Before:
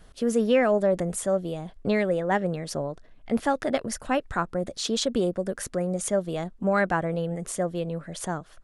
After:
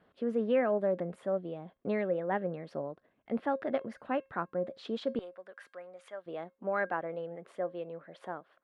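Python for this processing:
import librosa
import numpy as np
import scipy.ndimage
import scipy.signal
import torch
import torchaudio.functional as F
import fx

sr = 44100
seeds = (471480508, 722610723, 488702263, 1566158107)

y = fx.highpass(x, sr, hz=fx.steps((0.0, 200.0), (5.19, 1100.0), (6.26, 370.0)), slope=12)
y = fx.air_absorb(y, sr, metres=450.0)
y = fx.comb_fb(y, sr, f0_hz=540.0, decay_s=0.25, harmonics='all', damping=0.0, mix_pct=50)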